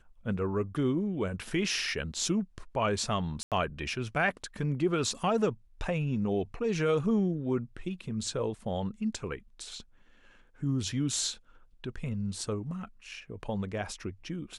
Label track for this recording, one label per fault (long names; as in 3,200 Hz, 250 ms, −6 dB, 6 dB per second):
3.430000	3.520000	drop-out 87 ms